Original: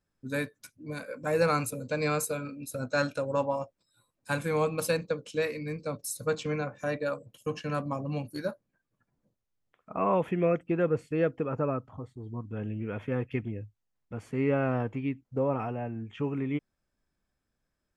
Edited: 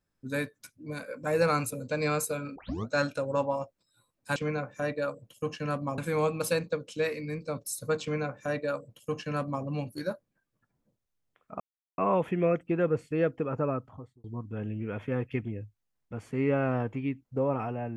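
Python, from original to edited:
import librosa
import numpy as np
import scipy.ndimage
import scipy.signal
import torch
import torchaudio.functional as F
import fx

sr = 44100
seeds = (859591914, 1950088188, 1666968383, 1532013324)

y = fx.edit(x, sr, fx.tape_start(start_s=2.56, length_s=0.32),
    fx.duplicate(start_s=6.4, length_s=1.62, to_s=4.36),
    fx.insert_silence(at_s=9.98, length_s=0.38),
    fx.fade_out_span(start_s=11.86, length_s=0.38), tone=tone)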